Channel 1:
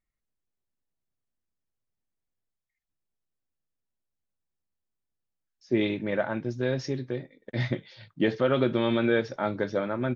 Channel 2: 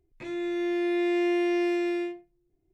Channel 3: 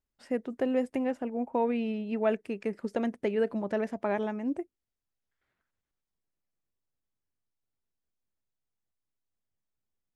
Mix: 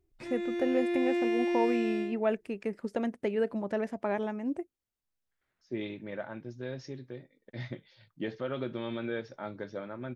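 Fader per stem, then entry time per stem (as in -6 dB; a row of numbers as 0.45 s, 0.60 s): -11.0 dB, -4.0 dB, -1.5 dB; 0.00 s, 0.00 s, 0.00 s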